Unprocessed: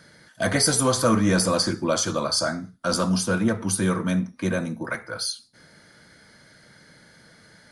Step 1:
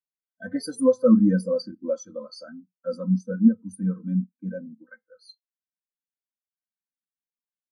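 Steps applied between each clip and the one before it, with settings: comb 3.9 ms, depth 55%; spectral contrast expander 2.5:1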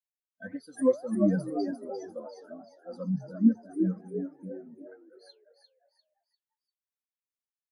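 tremolo 2.3 Hz, depth 84%; flange 1.7 Hz, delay 2.9 ms, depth 8.9 ms, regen -86%; on a send: frequency-shifting echo 348 ms, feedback 38%, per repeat +94 Hz, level -7 dB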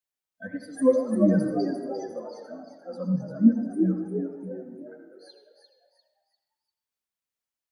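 reverberation RT60 0.80 s, pre-delay 62 ms, DRR 6 dB; trim +3.5 dB

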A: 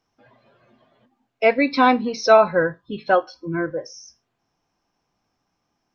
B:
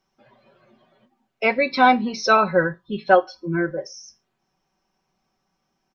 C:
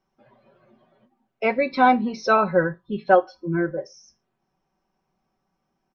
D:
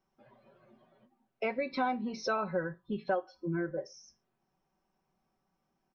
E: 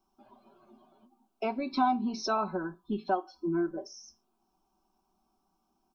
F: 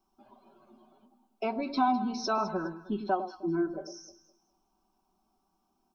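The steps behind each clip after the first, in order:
comb 5.3 ms, depth 69%; trim -1 dB
treble shelf 2.2 kHz -10.5 dB
compression 3:1, threshold -27 dBFS, peak gain reduction 12.5 dB; trim -4.5 dB
static phaser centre 510 Hz, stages 6; trim +6.5 dB
echo whose repeats swap between lows and highs 103 ms, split 1 kHz, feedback 50%, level -9 dB

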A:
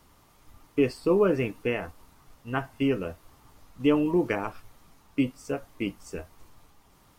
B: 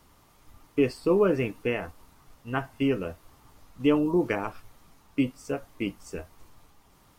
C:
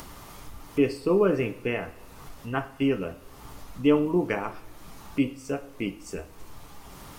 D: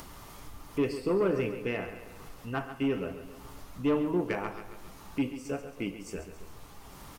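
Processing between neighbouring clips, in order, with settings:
time-frequency box 3.98–4.21 s, 1.5–3.3 kHz -12 dB
upward compressor, threshold -31 dBFS; two-slope reverb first 0.58 s, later 2.2 s, DRR 9.5 dB
saturation -16.5 dBFS, distortion -16 dB; on a send: feedback delay 137 ms, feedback 51%, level -11 dB; on the sum: trim -3.5 dB

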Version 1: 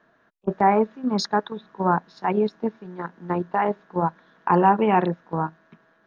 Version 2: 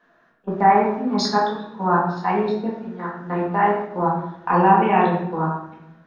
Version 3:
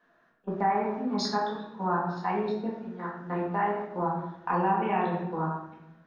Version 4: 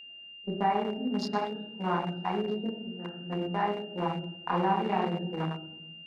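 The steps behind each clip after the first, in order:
bass shelf 300 Hz -7.5 dB; simulated room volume 210 m³, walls mixed, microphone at 1.9 m; trim -2 dB
compression 2:1, threshold -19 dBFS, peak gain reduction 6 dB; trim -6.5 dB
local Wiener filter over 41 samples; whistle 2.8 kHz -45 dBFS

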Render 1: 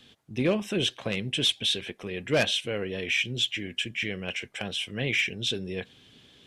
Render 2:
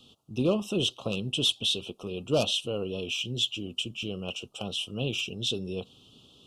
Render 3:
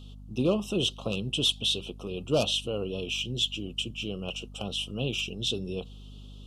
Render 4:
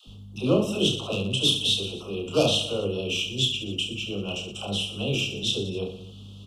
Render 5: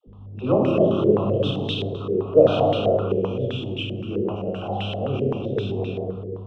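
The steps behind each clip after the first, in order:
elliptic band-stop 1.3–2.7 kHz, stop band 40 dB
hum 50 Hz, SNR 14 dB
phase dispersion lows, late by 76 ms, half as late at 440 Hz; on a send: reverse bouncing-ball echo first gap 30 ms, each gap 1.3×, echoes 5; on the sum: trim +2 dB
plate-style reverb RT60 2 s, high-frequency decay 0.5×, pre-delay 85 ms, DRR -1.5 dB; step-sequenced low-pass 7.7 Hz 430–2000 Hz; trim -1 dB

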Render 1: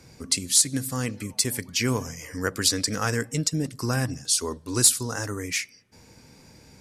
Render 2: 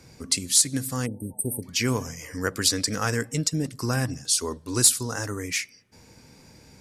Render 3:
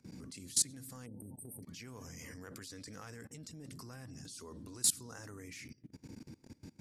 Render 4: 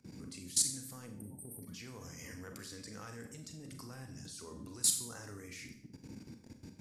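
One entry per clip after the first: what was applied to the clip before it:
spectral selection erased 1.06–1.63 s, 920–8200 Hz
transient shaper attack -8 dB, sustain 0 dB; band noise 79–300 Hz -44 dBFS; level held to a coarse grid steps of 22 dB; trim -5 dB
reverberation RT60 0.55 s, pre-delay 30 ms, DRR 5.5 dB

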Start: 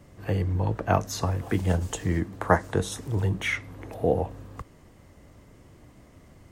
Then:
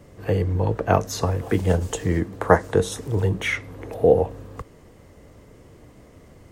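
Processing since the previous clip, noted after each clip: peaking EQ 460 Hz +7 dB 0.49 oct; trim +3 dB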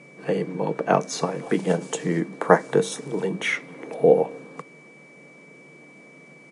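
echo from a far wall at 43 m, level -30 dB; FFT band-pass 130–11000 Hz; whistle 2.3 kHz -49 dBFS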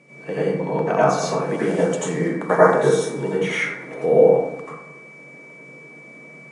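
plate-style reverb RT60 0.85 s, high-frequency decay 0.45×, pre-delay 75 ms, DRR -8.5 dB; trim -5.5 dB

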